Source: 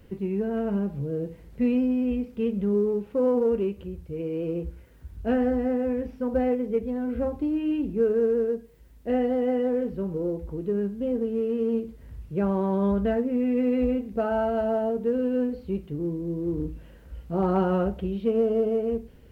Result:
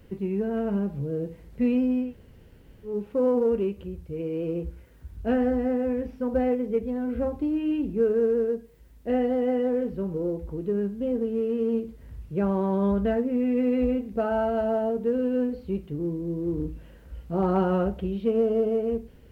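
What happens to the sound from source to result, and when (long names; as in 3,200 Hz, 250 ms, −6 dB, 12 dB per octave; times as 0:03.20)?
0:02.06–0:02.91: fill with room tone, crossfade 0.16 s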